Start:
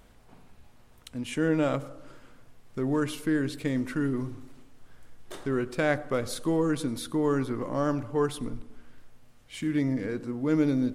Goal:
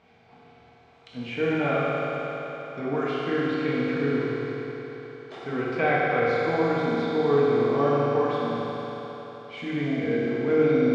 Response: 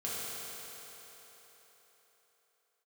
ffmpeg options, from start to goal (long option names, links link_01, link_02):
-filter_complex "[0:a]highpass=120,equalizer=frequency=220:width_type=q:width=4:gain=-4,equalizer=frequency=810:width_type=q:width=4:gain=8,equalizer=frequency=2300:width_type=q:width=4:gain=8,lowpass=frequency=5000:width=0.5412,lowpass=frequency=5000:width=1.3066[link_01];[1:a]atrim=start_sample=2205[link_02];[link_01][link_02]afir=irnorm=-1:irlink=0,acrossover=split=3500[link_03][link_04];[link_04]acompressor=threshold=-51dB:ratio=4:attack=1:release=60[link_05];[link_03][link_05]amix=inputs=2:normalize=0"